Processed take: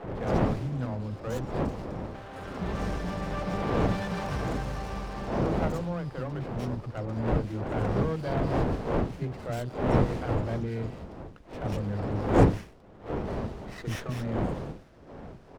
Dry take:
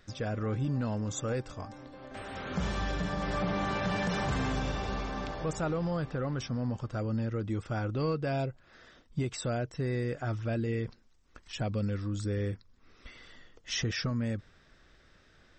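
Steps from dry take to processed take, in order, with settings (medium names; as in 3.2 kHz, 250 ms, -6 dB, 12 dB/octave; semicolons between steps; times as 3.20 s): wind noise 440 Hz -30 dBFS; three bands offset in time mids, lows, highs 40/190 ms, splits 300/2600 Hz; sliding maximum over 9 samples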